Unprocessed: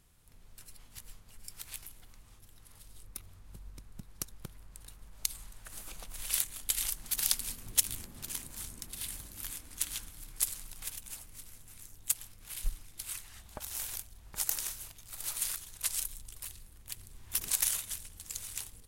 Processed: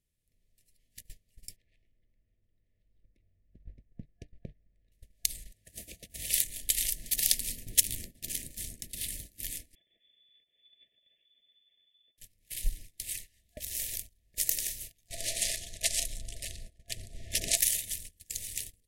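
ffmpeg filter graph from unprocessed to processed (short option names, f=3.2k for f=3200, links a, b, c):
-filter_complex "[0:a]asettb=1/sr,asplit=3[a][b][c];[a]atrim=end=1.564[d];[b]atrim=start=1.56:end=4.92,asetpts=PTS-STARTPTS,afade=t=in:d=0.004:c=qsin,afade=t=out:st=3.356:d=0.004:c=qsin,lowpass=1.7k,bandreject=f=148.7:t=h:w=4,bandreject=f=297.4:t=h:w=4,bandreject=f=446.1:t=h:w=4,bandreject=f=594.8:t=h:w=4,bandreject=f=743.5:t=h:w=4,bandreject=f=892.2:t=h:w=4,bandreject=f=1.0409k:t=h:w=4,bandreject=f=1.1896k:t=h:w=4,bandreject=f=1.3383k:t=h:w=4,bandreject=f=1.487k:t=h:w=4,bandreject=f=1.6357k:t=h:w=4,bandreject=f=1.7844k:t=h:w=4,bandreject=f=1.9331k:t=h:w=4,bandreject=f=2.0818k:t=h:w=4,bandreject=f=2.2305k:t=h:w=4,bandreject=f=2.3792k:t=h:w=4,bandreject=f=2.5279k:t=h:w=4,bandreject=f=2.6766k:t=h:w=4,bandreject=f=2.8253k:t=h:w=4,bandreject=f=2.974k:t=h:w=4,bandreject=f=3.1227k:t=h:w=4,bandreject=f=3.2714k:t=h:w=4,bandreject=f=3.4201k:t=h:w=4,bandreject=f=3.5688k:t=h:w=4,bandreject=f=3.7175k:t=h:w=4,bandreject=f=3.8662k:t=h:w=4,bandreject=f=4.0149k:t=h:w=4,bandreject=f=4.1636k:t=h:w=4,bandreject=f=4.3123k:t=h:w=4,bandreject=f=4.461k:t=h:w=4,bandreject=f=4.6097k:t=h:w=4,bandreject=f=4.7584k:t=h:w=4,bandreject=f=4.9071k:t=h:w=4[e];[c]atrim=start=4.916[f];[d][e]acrossfade=d=0.004:c1=hsin:c2=qsin[g];[g][f]acrossfade=d=0.004:c1=qsin:c2=hsin,asettb=1/sr,asplit=3[h][i][j];[h]atrim=end=5.544[k];[i]atrim=start=5.54:end=6.33,asetpts=PTS-STARTPTS,afade=t=in:d=0.004:c=qsin,afade=t=out:st=0.786:d=0.004:c=qsin,highpass=f=52:w=0.5412,highpass=f=52:w=1.3066,lowshelf=f=470:g=5.5[l];[j]atrim=start=6.326[m];[k][l]acrossfade=d=0.004:c1=hsin:c2=qsin[n];[n][m]acrossfade=d=0.004:c1=qsin:c2=hsin,asettb=1/sr,asplit=3[o][p][q];[o]atrim=end=9.754[r];[p]atrim=start=9.75:end=12.18,asetpts=PTS-STARTPTS,afade=t=in:d=0.004:c=qsin,afade=t=out:st=2.426:d=0.004:c=qsin,acompressor=threshold=-43dB:ratio=10:attack=3.2:release=140:knee=1:detection=peak,lowpass=f=3k:t=q:w=0.5098,lowpass=f=3k:t=q:w=0.6013,lowpass=f=3k:t=q:w=0.9,lowpass=f=3k:t=q:w=2.563,afreqshift=-3500[s];[q]atrim=start=12.176[t];[r][s]acrossfade=d=0.004:c1=hsin:c2=qsin[u];[u][t]acrossfade=d=0.004:c1=qsin:c2=hsin,asettb=1/sr,asplit=3[v][w][x];[v]atrim=end=15.084[y];[w]atrim=start=15.08:end=17.57,asetpts=PTS-STARTPTS,afade=t=in:d=0.004:c=qsin,afade=t=out:st=2.486:d=0.004:c=qsin,lowpass=7.5k,equalizer=f=700:t=o:w=0.51:g=14,acontrast=33[z];[x]atrim=start=17.566[aa];[y][z]acrossfade=d=0.004:c1=hsin:c2=qsin[ab];[ab][aa]acrossfade=d=0.004:c1=qsin:c2=hsin,agate=range=-20dB:threshold=-45dB:ratio=16:detection=peak,afftfilt=real='re*(1-between(b*sr/4096,690,1700))':imag='im*(1-between(b*sr/4096,690,1700))':win_size=4096:overlap=0.75,volume=3dB"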